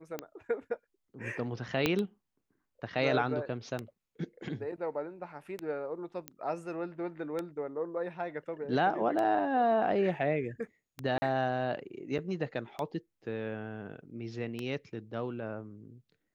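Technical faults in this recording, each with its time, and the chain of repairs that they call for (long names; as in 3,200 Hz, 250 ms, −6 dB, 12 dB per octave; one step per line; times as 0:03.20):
scratch tick 33 1/3 rpm −21 dBFS
0:01.86: click −12 dBFS
0:06.28: click −21 dBFS
0:11.18–0:11.22: drop-out 40 ms
0:12.18–0:12.19: drop-out 6.5 ms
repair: click removal
repair the gap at 0:11.18, 40 ms
repair the gap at 0:12.18, 6.5 ms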